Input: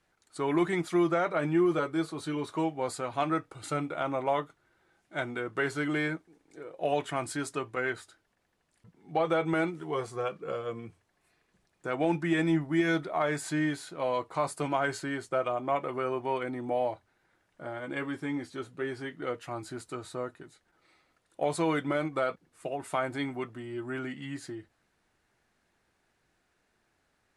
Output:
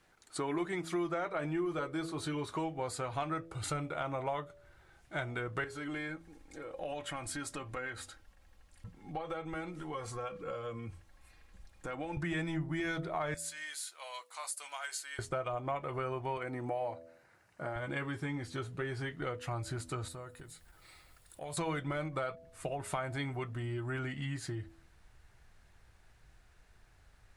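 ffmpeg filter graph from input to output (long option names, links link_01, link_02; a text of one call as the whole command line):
ffmpeg -i in.wav -filter_complex "[0:a]asettb=1/sr,asplit=3[link_01][link_02][link_03];[link_01]atrim=end=5.644[link_04];[link_02]atrim=start=5.64:end=12.17,asetpts=PTS-STARTPTS,afade=type=in:duration=0.004:curve=qsin,afade=type=out:start_time=6.526:duration=0.004:curve=qsin,acompressor=threshold=-47dB:ratio=2:attack=3.2:release=140:knee=1:detection=peak,aecho=1:1:3.7:0.56,atrim=end_sample=287973[link_05];[link_03]atrim=start=12.166[link_06];[link_04][link_05]acrossfade=duration=0.004:curve1=hsin:curve2=qsin[link_07];[link_07][link_06]acrossfade=duration=0.004:curve1=qsin:curve2=hsin,asettb=1/sr,asplit=3[link_08][link_09][link_10];[link_08]atrim=end=13.344[link_11];[link_09]atrim=start=13.34:end=15.19,asetpts=PTS-STARTPTS,afade=type=in:duration=0.004:curve=qsin,afade=type=out:start_time=1.846:duration=0.004:curve=qsin,highpass=570,aderivative[link_12];[link_10]atrim=start=15.186[link_13];[link_11][link_12]acrossfade=duration=0.004:curve1=hsin:curve2=qsin[link_14];[link_14][link_13]acrossfade=duration=0.004:curve1=qsin:curve2=hsin,asettb=1/sr,asplit=3[link_15][link_16][link_17];[link_15]atrim=end=16.374[link_18];[link_16]atrim=start=16.37:end=17.76,asetpts=PTS-STARTPTS,afade=type=in:duration=0.004:curve=qsin,afade=type=out:start_time=1.386:duration=0.004:curve=qsin,highpass=160,equalizer=frequency=3400:width_type=o:width=0.22:gain=-10.5[link_19];[link_17]atrim=start=17.756[link_20];[link_18][link_19]acrossfade=duration=0.004:curve1=hsin:curve2=qsin[link_21];[link_21][link_20]acrossfade=duration=0.004:curve1=qsin:curve2=hsin,asettb=1/sr,asplit=3[link_22][link_23][link_24];[link_22]atrim=end=20.084[link_25];[link_23]atrim=start=20.08:end=21.57,asetpts=PTS-STARTPTS,afade=type=in:duration=0.004:curve=qsin,afade=type=out:start_time=1.486:duration=0.004:curve=qsin,aemphasis=mode=production:type=50fm,bandreject=frequency=6100:width=11,acompressor=threshold=-57dB:ratio=2:attack=3.2:release=140:knee=1:detection=peak[link_26];[link_24]atrim=start=21.566[link_27];[link_25][link_26]acrossfade=duration=0.004:curve1=hsin:curve2=qsin[link_28];[link_28][link_27]acrossfade=duration=0.004:curve1=qsin:curve2=hsin,bandreject=frequency=82.55:width_type=h:width=4,bandreject=frequency=165.1:width_type=h:width=4,bandreject=frequency=247.65:width_type=h:width=4,bandreject=frequency=330.2:width_type=h:width=4,bandreject=frequency=412.75:width_type=h:width=4,bandreject=frequency=495.3:width_type=h:width=4,bandreject=frequency=577.85:width_type=h:width=4,bandreject=frequency=660.4:width_type=h:width=4,asubboost=boost=9:cutoff=84,acompressor=threshold=-42dB:ratio=3,volume=5.5dB" out.wav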